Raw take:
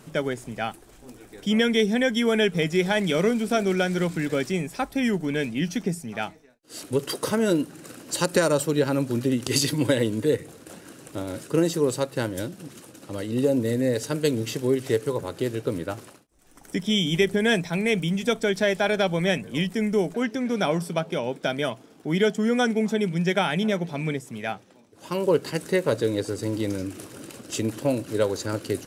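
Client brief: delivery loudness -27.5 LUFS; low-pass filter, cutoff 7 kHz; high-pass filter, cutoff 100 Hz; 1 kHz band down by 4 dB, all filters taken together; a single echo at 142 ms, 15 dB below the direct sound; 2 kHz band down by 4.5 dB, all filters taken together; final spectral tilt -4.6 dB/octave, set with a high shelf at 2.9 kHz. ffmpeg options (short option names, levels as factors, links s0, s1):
-af "highpass=100,lowpass=7000,equalizer=f=1000:t=o:g=-5,equalizer=f=2000:t=o:g=-7,highshelf=f=2900:g=7.5,aecho=1:1:142:0.178,volume=0.794"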